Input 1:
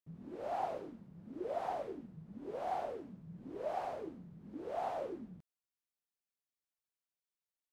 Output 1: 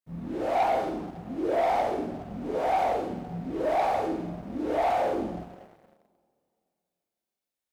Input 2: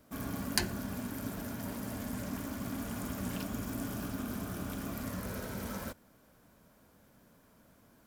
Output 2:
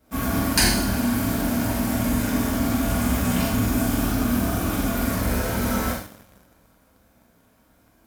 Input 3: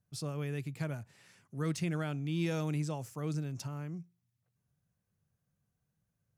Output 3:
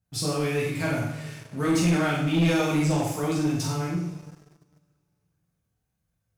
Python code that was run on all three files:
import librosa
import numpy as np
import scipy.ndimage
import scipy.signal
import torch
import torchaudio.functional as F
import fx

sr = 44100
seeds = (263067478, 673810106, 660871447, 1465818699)

y = fx.room_flutter(x, sr, wall_m=7.9, rt60_s=0.41)
y = fx.rev_double_slope(y, sr, seeds[0], early_s=0.6, late_s=2.7, knee_db=-19, drr_db=-6.5)
y = fx.leveller(y, sr, passes=2)